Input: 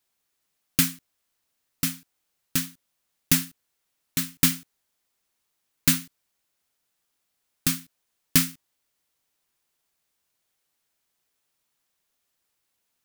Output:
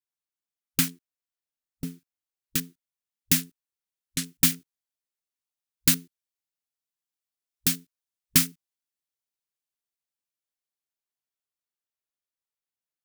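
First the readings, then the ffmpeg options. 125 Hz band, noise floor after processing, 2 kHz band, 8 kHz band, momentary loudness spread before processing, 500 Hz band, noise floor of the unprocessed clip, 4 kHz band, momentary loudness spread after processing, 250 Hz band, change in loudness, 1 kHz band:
−2.5 dB, below −85 dBFS, −2.5 dB, 0.0 dB, 11 LU, −1.5 dB, −78 dBFS, −0.5 dB, 17 LU, −2.5 dB, 0.0 dB, −4.0 dB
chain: -filter_complex "[0:a]afwtdn=0.0158,acrossover=split=720|2900[link_01][link_02][link_03];[link_03]dynaudnorm=framelen=200:gausssize=31:maxgain=11.5dB[link_04];[link_01][link_02][link_04]amix=inputs=3:normalize=0,volume=-2.5dB"

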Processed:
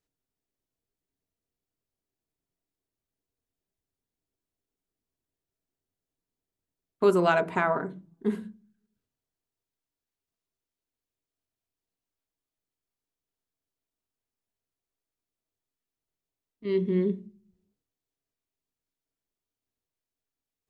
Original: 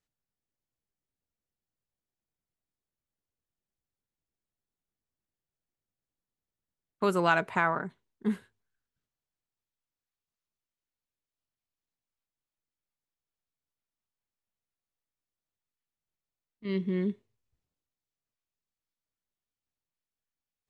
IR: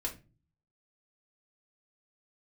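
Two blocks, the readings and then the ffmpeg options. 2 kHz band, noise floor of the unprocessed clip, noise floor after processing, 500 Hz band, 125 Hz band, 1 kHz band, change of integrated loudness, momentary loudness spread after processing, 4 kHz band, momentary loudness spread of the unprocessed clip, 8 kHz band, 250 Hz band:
−1.0 dB, below −85 dBFS, below −85 dBFS, +6.5 dB, +2.5 dB, +0.5 dB, +3.5 dB, 15 LU, −0.5 dB, 15 LU, can't be measured, +2.5 dB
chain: -filter_complex "[0:a]asplit=2[link_01][link_02];[link_02]bandpass=frequency=510:width_type=q:width=0.78:csg=0[link_03];[1:a]atrim=start_sample=2205,lowpass=2400,lowshelf=frequency=350:gain=10.5[link_04];[link_03][link_04]afir=irnorm=-1:irlink=0,volume=-4.5dB[link_05];[link_01][link_05]amix=inputs=2:normalize=0"

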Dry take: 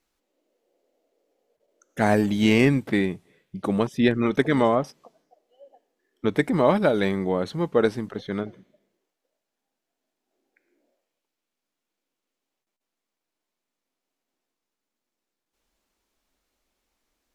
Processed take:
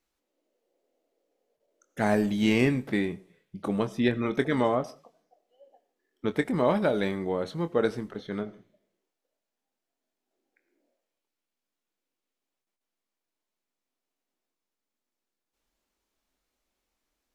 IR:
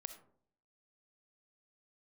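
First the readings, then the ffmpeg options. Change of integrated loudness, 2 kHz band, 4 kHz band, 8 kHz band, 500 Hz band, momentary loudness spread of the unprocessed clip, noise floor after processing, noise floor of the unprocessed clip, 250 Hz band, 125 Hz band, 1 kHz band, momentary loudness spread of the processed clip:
−4.5 dB, −4.5 dB, −4.5 dB, can't be measured, −4.5 dB, 13 LU, below −85 dBFS, −85 dBFS, −4.5 dB, −5.0 dB, −5.0 dB, 12 LU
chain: -filter_complex "[0:a]asplit=2[link_01][link_02];[1:a]atrim=start_sample=2205,afade=type=out:start_time=0.23:duration=0.01,atrim=end_sample=10584,adelay=24[link_03];[link_02][link_03]afir=irnorm=-1:irlink=0,volume=-6.5dB[link_04];[link_01][link_04]amix=inputs=2:normalize=0,volume=-5dB"

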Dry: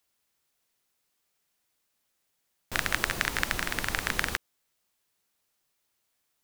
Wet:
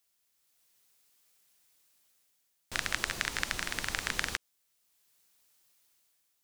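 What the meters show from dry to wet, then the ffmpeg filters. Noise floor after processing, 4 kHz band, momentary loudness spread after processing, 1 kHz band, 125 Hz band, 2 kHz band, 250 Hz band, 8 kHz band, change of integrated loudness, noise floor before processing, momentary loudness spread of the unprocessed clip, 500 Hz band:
−76 dBFS, −2.0 dB, 4 LU, −5.5 dB, −6.5 dB, −4.5 dB, −6.5 dB, −2.0 dB, −4.0 dB, −77 dBFS, 5 LU, −6.5 dB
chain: -filter_complex "[0:a]acrossover=split=9300[link_01][link_02];[link_02]acompressor=threshold=-52dB:ratio=4:attack=1:release=60[link_03];[link_01][link_03]amix=inputs=2:normalize=0,highshelf=frequency=2800:gain=8,dynaudnorm=framelen=120:gausssize=9:maxgain=7dB,volume=-6dB"

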